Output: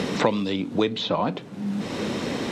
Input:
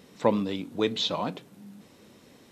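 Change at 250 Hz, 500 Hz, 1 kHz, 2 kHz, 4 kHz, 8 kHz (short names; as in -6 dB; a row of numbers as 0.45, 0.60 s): +6.0, +4.0, +5.5, +9.0, +2.0, +5.5 dB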